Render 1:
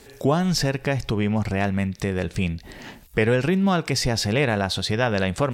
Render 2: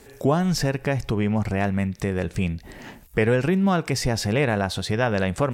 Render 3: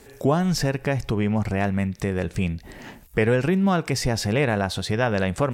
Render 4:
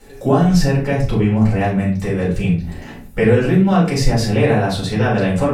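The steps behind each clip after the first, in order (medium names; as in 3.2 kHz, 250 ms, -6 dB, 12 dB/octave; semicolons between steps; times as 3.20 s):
peaking EQ 4 kHz -5.5 dB 1.2 oct
no audible change
reverberation RT60 0.40 s, pre-delay 3 ms, DRR -7 dB; trim -7 dB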